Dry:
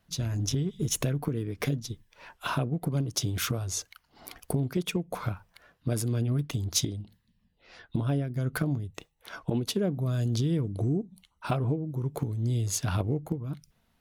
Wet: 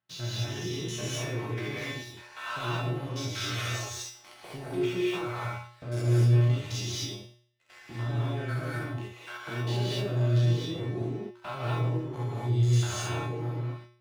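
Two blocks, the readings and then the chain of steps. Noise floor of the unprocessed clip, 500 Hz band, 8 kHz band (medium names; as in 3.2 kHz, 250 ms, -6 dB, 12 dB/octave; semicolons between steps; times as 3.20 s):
-72 dBFS, +1.0 dB, -5.5 dB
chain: spectrogram pixelated in time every 100 ms; low-pass 2.1 kHz 12 dB/octave; tilt EQ +4.5 dB/octave; waveshaping leveller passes 3; peak limiter -23.5 dBFS, peak gain reduction 6.5 dB; feedback comb 120 Hz, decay 0.54 s, harmonics odd, mix 90%; gated-style reverb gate 270 ms rising, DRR -5 dB; trim +7 dB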